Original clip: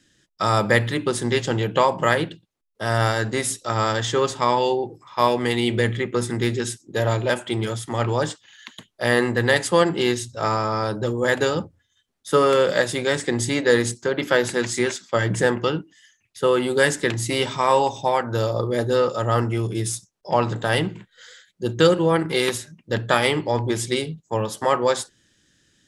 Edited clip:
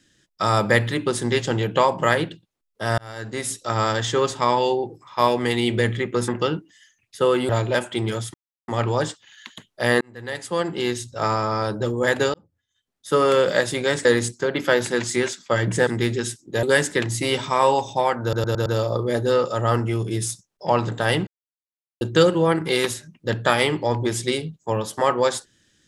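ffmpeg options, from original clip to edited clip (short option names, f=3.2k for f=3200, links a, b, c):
-filter_complex "[0:a]asplit=16[a][b][c][d][e][f][g][h][i][j][k][l][m][n][o][p];[a]atrim=end=2.98,asetpts=PTS-STARTPTS,afade=t=out:st=2.976:d=0.004:c=hsin[q];[b]atrim=start=2.98:end=6.282,asetpts=PTS-STARTPTS,afade=t=in:d=0.68[r];[c]atrim=start=15.498:end=16.712[s];[d]atrim=start=7.038:end=7.89,asetpts=PTS-STARTPTS,afade=t=out:st=0.848:d=0.004:c=hsin,apad=pad_dur=0.34[t];[e]atrim=start=7.89:end=9.22,asetpts=PTS-STARTPTS,afade=t=in:d=0.004:c=hsin,afade=t=out:st=1.326:d=0.004:c=hsin[u];[f]atrim=start=9.22:end=11.55,asetpts=PTS-STARTPTS,afade=t=in:d=1.22,afade=t=out:st=2.326:d=0.004:c=hsin[v];[g]atrim=start=11.55:end=13.262,asetpts=PTS-STARTPTS,afade=t=in:d=0.98[w];[h]atrim=start=13.678:end=15.502[x];[i]atrim=start=6.278:end=7.042[y];[j]atrim=start=16.708:end=18.412[z];[k]atrim=start=18.298:end=18.412[aa];[l]atrim=start=18.298:end=18.412[ab];[m]atrim=start=18.298:end=18.412[ac];[n]atrim=start=18.298:end=20.91,asetpts=PTS-STARTPTS,afade=t=out:st=2.608:d=0.004:c=hsin[ad];[o]atrim=start=20.91:end=21.65,asetpts=PTS-STARTPTS,volume=0[ae];[p]atrim=start=21.65,asetpts=PTS-STARTPTS,afade=t=in:d=0.004:c=hsin[af];[q][r]concat=n=2:v=0:a=1[ag];[ag][s]acrossfade=d=0.004:c1=hsin:c2=hsin[ah];[t][u][v][w]concat=n=4:v=0:a=1[ai];[ah][ai]acrossfade=d=0.004:c1=hsin:c2=hsin[aj];[aj][x]acrossfade=d=0.004:c1=hsin:c2=hsin[ak];[ak][y]acrossfade=d=0.004:c1=hsin:c2=hsin[al];[al][z]acrossfade=d=0.004:c1=hsin:c2=hsin[am];[am][aa]acrossfade=d=0.004:c1=hsin:c2=hsin[an];[an][ab]acrossfade=d=0.004:c1=hsin:c2=hsin[ao];[ao][ac]acrossfade=d=0.004:c1=hsin:c2=hsin[ap];[ad][ae][af]concat=n=3:v=0:a=1[aq];[ap][aq]acrossfade=d=0.004:c1=hsin:c2=hsin"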